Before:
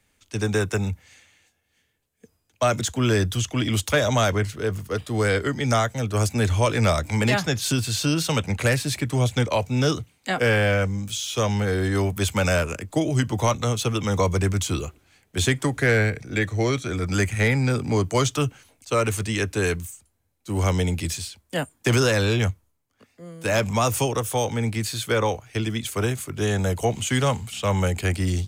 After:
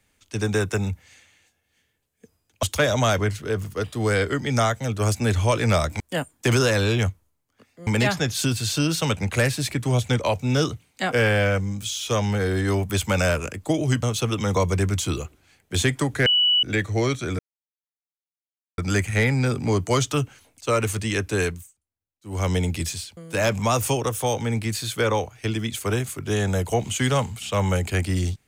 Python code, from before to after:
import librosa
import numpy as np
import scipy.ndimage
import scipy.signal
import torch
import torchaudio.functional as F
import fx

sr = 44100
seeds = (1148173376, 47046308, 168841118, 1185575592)

y = fx.edit(x, sr, fx.cut(start_s=2.63, length_s=1.14),
    fx.cut(start_s=13.3, length_s=0.36),
    fx.bleep(start_s=15.89, length_s=0.37, hz=2950.0, db=-15.5),
    fx.insert_silence(at_s=17.02, length_s=1.39),
    fx.fade_down_up(start_s=19.67, length_s=1.09, db=-20.5, fade_s=0.31),
    fx.move(start_s=21.41, length_s=1.87, to_s=7.14), tone=tone)